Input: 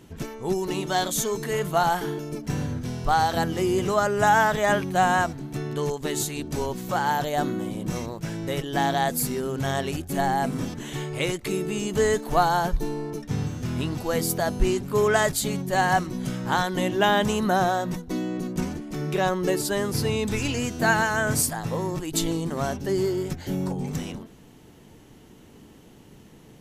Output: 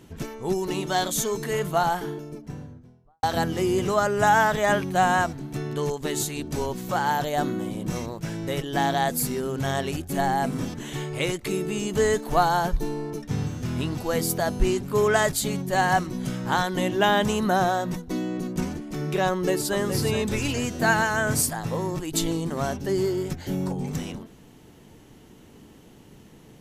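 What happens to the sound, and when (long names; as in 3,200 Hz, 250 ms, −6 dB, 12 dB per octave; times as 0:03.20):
0:01.54–0:03.23: fade out and dull
0:19.30–0:19.80: delay throw 420 ms, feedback 45%, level −8 dB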